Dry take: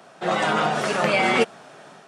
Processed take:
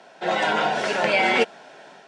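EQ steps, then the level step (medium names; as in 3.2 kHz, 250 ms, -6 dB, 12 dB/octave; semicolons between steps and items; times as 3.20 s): band-pass 190–5900 Hz; Butterworth band-stop 1.2 kHz, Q 5.2; bass shelf 370 Hz -5 dB; +1.5 dB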